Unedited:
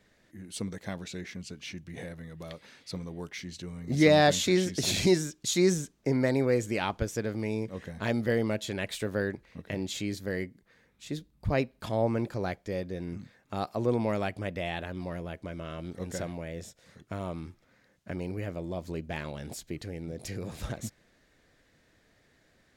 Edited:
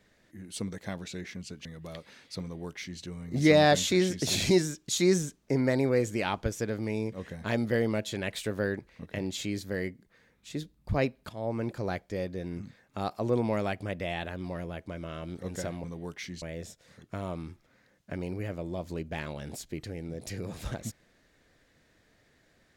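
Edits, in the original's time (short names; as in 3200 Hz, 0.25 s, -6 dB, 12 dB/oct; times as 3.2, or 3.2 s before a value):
1.65–2.21 cut
2.99–3.57 copy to 16.4
11.85–12.56 fade in equal-power, from -14 dB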